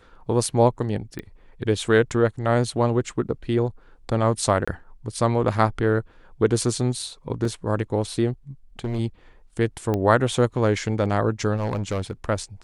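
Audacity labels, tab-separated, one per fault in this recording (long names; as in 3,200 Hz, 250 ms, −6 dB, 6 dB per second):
1.190000	1.190000	click −20 dBFS
4.650000	4.670000	drop-out 25 ms
7.450000	7.450000	drop-out 2.5 ms
8.790000	9.000000	clipping −22 dBFS
9.940000	9.940000	click −13 dBFS
11.560000	12.110000	clipping −21 dBFS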